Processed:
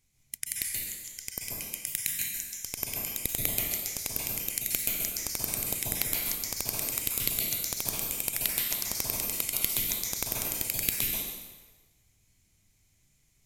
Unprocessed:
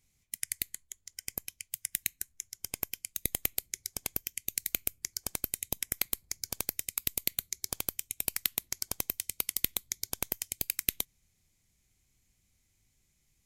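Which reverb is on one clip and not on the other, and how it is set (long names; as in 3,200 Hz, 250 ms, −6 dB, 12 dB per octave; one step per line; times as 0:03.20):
dense smooth reverb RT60 1.3 s, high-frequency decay 0.85×, pre-delay 120 ms, DRR −3.5 dB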